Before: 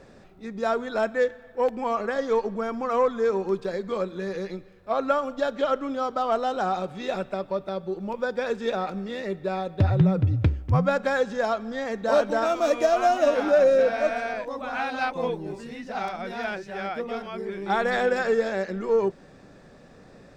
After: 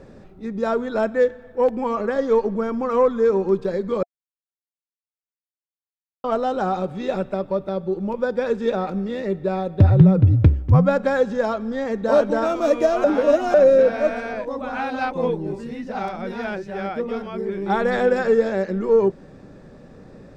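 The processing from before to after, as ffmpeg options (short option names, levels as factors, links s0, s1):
-filter_complex "[0:a]asplit=5[s0][s1][s2][s3][s4];[s0]atrim=end=4.03,asetpts=PTS-STARTPTS,afade=t=out:st=4.026:d=0.004:c=hsin[s5];[s1]atrim=start=4.03:end=6.24,asetpts=PTS-STARTPTS,volume=0[s6];[s2]atrim=start=6.24:end=13.042,asetpts=PTS-STARTPTS,afade=t=in:d=0.004:c=hsin[s7];[s3]atrim=start=13.038:end=13.542,asetpts=PTS-STARTPTS,areverse[s8];[s4]atrim=start=13.538[s9];[s5][s6][s7]concat=n=3:v=0:a=1[s10];[s10][s8]acrossfade=d=0.004:c1=hsin:c2=hsin[s11];[s11][s9]acrossfade=d=0.004:c1=hsin:c2=hsin,tiltshelf=f=870:g=5,bandreject=f=700:w=12,volume=1.41"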